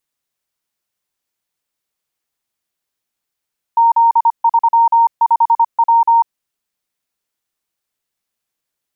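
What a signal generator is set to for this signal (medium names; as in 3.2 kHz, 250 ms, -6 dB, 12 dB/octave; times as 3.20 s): Morse "Z35W" 25 wpm 925 Hz -7 dBFS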